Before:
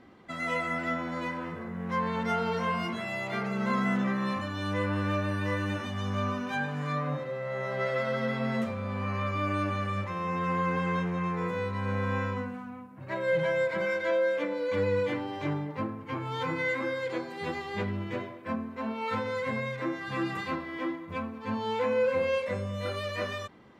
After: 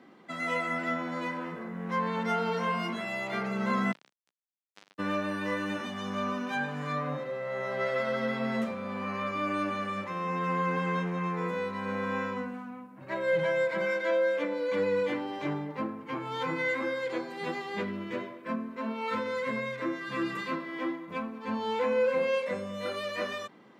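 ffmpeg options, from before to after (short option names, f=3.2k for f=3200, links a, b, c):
-filter_complex "[0:a]asplit=3[a][b][c];[a]afade=t=out:st=3.91:d=0.02[d];[b]acrusher=bits=2:mix=0:aa=0.5,afade=t=in:st=3.91:d=0.02,afade=t=out:st=4.98:d=0.02[e];[c]afade=t=in:st=4.98:d=0.02[f];[d][e][f]amix=inputs=3:normalize=0,asettb=1/sr,asplit=3[g][h][i];[g]atrim=end=17.804[j];[h]atrim=start=17.8:end=20.72,asetpts=PTS-STARTPTS,afade=t=in:d=0.004:c=qsin,afade=t=out:st=2.916:d=0.004:c=qsin,bandreject=f=780:w=6.7[k];[i]atrim=start=20.716[l];[j][k]acrossfade=d=0.004:c1=hsin:c2=qsin[m];[m][l]acrossfade=d=0.004:c1=qsin:c2=hsin,highpass=f=160:w=0.5412,highpass=f=160:w=1.3066"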